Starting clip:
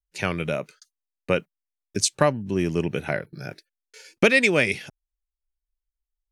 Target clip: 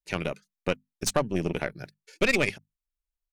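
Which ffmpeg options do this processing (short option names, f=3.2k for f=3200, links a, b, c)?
-af "aeval=exprs='(tanh(5.62*val(0)+0.7)-tanh(0.7))/5.62':c=same,bandreject=f=50:t=h:w=6,bandreject=f=100:t=h:w=6,bandreject=f=150:t=h:w=6,bandreject=f=200:t=h:w=6,bandreject=f=250:t=h:w=6,atempo=1.9"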